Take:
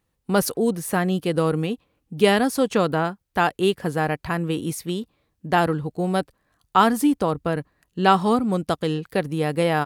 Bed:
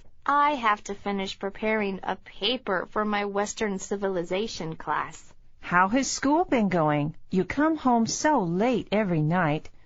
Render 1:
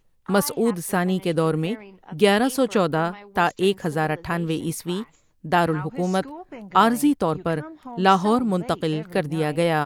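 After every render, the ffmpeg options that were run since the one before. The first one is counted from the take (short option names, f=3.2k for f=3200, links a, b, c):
-filter_complex "[1:a]volume=-15.5dB[a];[0:a][a]amix=inputs=2:normalize=0"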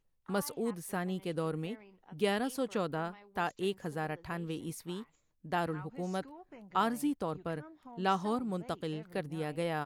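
-af "volume=-13.5dB"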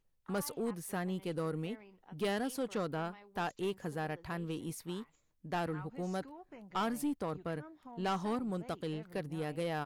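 -af "aeval=exprs='(tanh(25.1*val(0)+0.15)-tanh(0.15))/25.1':c=same"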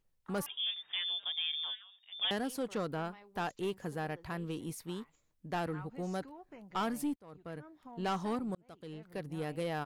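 -filter_complex "[0:a]asettb=1/sr,asplit=3[a][b][c];[a]atrim=end=0.464[d];[b]atrim=start=0.46:end=2.31,asetpts=PTS-STARTPTS,afade=t=in:d=0.004:c=qsin,afade=t=out:st=1.846:d=0.004:c=qsin,lowpass=f=3.1k:t=q:w=0.5098,lowpass=f=3.1k:t=q:w=0.6013,lowpass=f=3.1k:t=q:w=0.9,lowpass=f=3.1k:t=q:w=2.563,afreqshift=-3700[e];[c]atrim=start=2.306[f];[d][e]acrossfade=d=0.004:c1=hsin:c2=qsin[g];[g][f]acrossfade=d=0.004:c1=qsin:c2=hsin,asplit=3[h][i][j];[h]atrim=end=7.16,asetpts=PTS-STARTPTS,afade=t=out:st=7.156:d=0.004:c=hsin[k];[i]atrim=start=7.16:end=8.55,asetpts=PTS-STARTPTS,afade=t=in:d=0.68,afade=t=out:st=1.386:d=0.004:c=hsin[l];[j]atrim=start=8.55,asetpts=PTS-STARTPTS,afade=t=in:d=0.83[m];[k][l][m]concat=n=3:v=0:a=1"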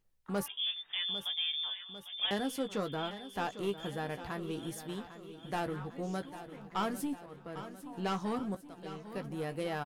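-filter_complex "[0:a]asplit=2[a][b];[b]adelay=15,volume=-8.5dB[c];[a][c]amix=inputs=2:normalize=0,aecho=1:1:800|1600|2400|3200|4000|4800:0.224|0.132|0.0779|0.046|0.0271|0.016"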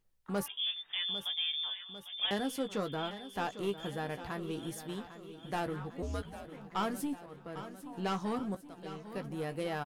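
-filter_complex "[0:a]asettb=1/sr,asplit=3[a][b][c];[a]atrim=end=6.024[d];[b]atrim=start=6.02:end=6.45,asetpts=PTS-STARTPTS,afade=t=in:d=0.004:c=qsin,afade=t=out:st=0.426:d=0.004:c=qsin,afreqshift=-110[e];[c]atrim=start=6.446[f];[d][e]acrossfade=d=0.004:c1=hsin:c2=qsin[g];[g][f]acrossfade=d=0.004:c1=qsin:c2=hsin"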